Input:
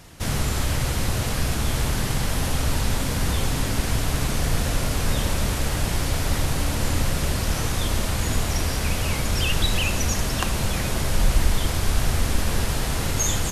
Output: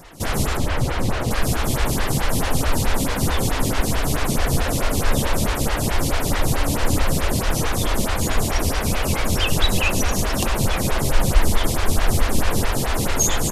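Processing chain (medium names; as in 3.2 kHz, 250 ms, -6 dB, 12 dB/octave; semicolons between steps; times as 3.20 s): 0.57–1.31 s: low-pass 3.4 kHz 6 dB/octave; lamp-driven phase shifter 4.6 Hz; trim +7.5 dB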